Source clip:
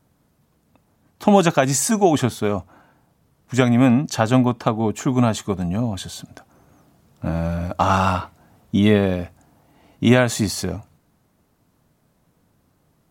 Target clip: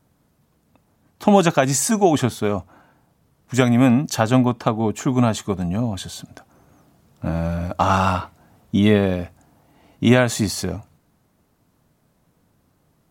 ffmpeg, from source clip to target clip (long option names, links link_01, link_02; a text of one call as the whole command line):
ffmpeg -i in.wav -filter_complex "[0:a]asettb=1/sr,asplit=3[link_01][link_02][link_03];[link_01]atrim=end=3.544[link_04];[link_02]atrim=start=3.54:end=4.23,asetpts=PTS-STARTPTS,afade=type=in:duration=0.004:curve=qsin,afade=type=out:start_time=0.686:duration=0.004:curve=qsin,highshelf=frequency=10000:gain=9[link_05];[link_03]atrim=start=4.226[link_06];[link_04][link_05]acrossfade=duration=0.004:curve1=hsin:curve2=qsin[link_07];[link_07][link_06]acrossfade=duration=0.004:curve1=qsin:curve2=hsin" out.wav